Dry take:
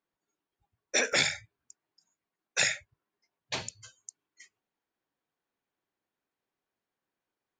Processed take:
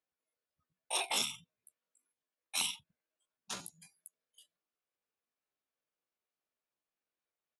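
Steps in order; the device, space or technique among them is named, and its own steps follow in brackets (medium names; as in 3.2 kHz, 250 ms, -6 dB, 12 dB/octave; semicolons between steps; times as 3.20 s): chipmunk voice (pitch shift +7.5 st); trim -7 dB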